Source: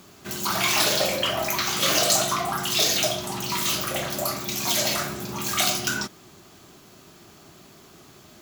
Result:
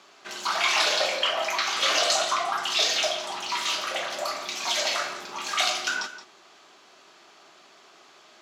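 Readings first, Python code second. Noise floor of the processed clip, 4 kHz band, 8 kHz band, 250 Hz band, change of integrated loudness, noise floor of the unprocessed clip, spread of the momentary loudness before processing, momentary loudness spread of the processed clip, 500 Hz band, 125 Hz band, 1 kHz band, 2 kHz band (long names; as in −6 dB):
−54 dBFS, −0.5 dB, −6.0 dB, −13.5 dB, −2.0 dB, −51 dBFS, 9 LU, 9 LU, −2.5 dB, below −20 dB, +0.5 dB, +1.0 dB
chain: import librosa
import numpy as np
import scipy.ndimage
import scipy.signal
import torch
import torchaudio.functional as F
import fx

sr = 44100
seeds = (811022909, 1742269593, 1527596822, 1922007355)

p1 = fx.bandpass_edges(x, sr, low_hz=610.0, high_hz=4900.0)
p2 = p1 + fx.echo_single(p1, sr, ms=171, db=-13.0, dry=0)
y = p2 * librosa.db_to_amplitude(1.0)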